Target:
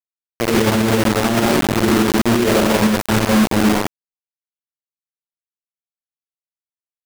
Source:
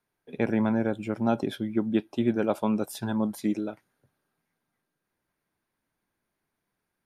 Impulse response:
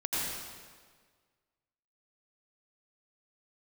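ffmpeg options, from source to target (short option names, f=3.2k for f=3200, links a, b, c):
-filter_complex "[0:a]lowpass=f=1.3k:p=1[a];[1:a]atrim=start_sample=2205,asetrate=61740,aresample=44100[b];[a][b]afir=irnorm=-1:irlink=0,acrusher=bits=3:mix=0:aa=0.000001,alimiter=level_in=21dB:limit=-1dB:release=50:level=0:latency=1,volume=-8.5dB"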